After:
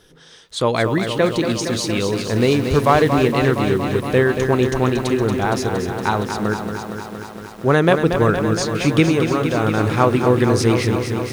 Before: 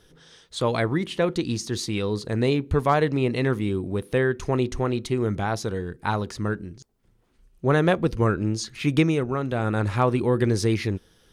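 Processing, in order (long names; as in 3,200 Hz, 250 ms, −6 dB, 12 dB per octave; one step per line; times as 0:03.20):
0:02.33–0:03.28: converter with a step at zero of −34 dBFS
low-shelf EQ 140 Hz −5.5 dB
feedback echo at a low word length 232 ms, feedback 80%, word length 8 bits, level −7.5 dB
level +6 dB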